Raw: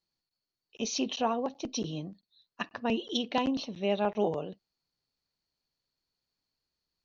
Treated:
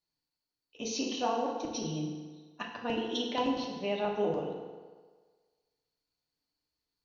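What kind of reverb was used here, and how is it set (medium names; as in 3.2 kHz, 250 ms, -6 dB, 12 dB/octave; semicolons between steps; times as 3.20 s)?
FDN reverb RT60 1.5 s, low-frequency decay 0.8×, high-frequency decay 0.75×, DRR -1 dB; trim -5 dB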